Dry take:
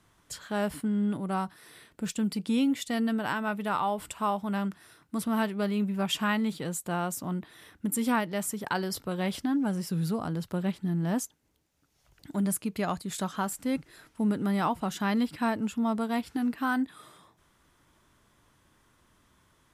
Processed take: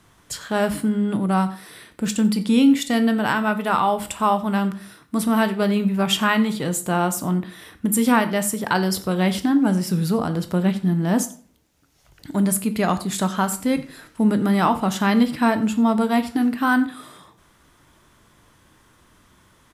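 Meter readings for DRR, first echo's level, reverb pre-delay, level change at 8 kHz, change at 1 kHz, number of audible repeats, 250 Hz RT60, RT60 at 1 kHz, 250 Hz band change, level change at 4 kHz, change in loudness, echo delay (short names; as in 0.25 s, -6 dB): 9.5 dB, -21.0 dB, 16 ms, +9.5 dB, +9.5 dB, 1, 0.50 s, 0.45 s, +9.5 dB, +9.5 dB, +9.5 dB, 89 ms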